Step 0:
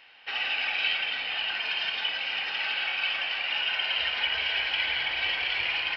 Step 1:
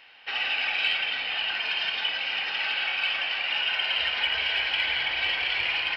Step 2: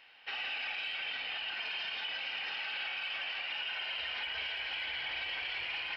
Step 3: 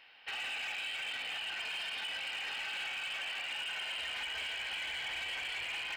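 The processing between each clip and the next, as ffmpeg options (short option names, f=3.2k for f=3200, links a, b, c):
-af "acontrast=71,volume=-5dB"
-af "alimiter=limit=-23dB:level=0:latency=1:release=38,volume=-6.5dB"
-af "asoftclip=type=hard:threshold=-34.5dB"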